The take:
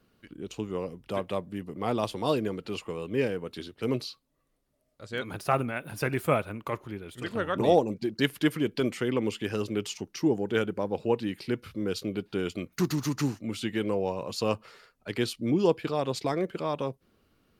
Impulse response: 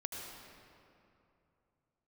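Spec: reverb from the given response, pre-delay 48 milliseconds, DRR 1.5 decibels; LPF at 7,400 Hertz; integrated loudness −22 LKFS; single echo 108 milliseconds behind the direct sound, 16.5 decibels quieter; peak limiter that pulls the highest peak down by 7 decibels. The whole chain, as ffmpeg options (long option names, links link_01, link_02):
-filter_complex "[0:a]lowpass=7400,alimiter=limit=-17dB:level=0:latency=1,aecho=1:1:108:0.15,asplit=2[link_01][link_02];[1:a]atrim=start_sample=2205,adelay=48[link_03];[link_02][link_03]afir=irnorm=-1:irlink=0,volume=-1.5dB[link_04];[link_01][link_04]amix=inputs=2:normalize=0,volume=7dB"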